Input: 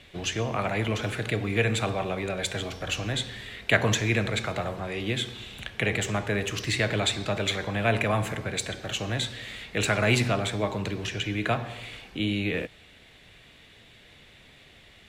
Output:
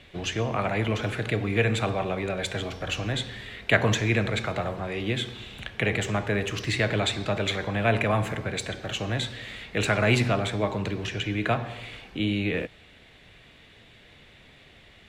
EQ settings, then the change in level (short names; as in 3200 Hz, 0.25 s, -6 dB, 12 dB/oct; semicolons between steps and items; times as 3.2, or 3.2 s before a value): high shelf 4800 Hz -7.5 dB; +1.5 dB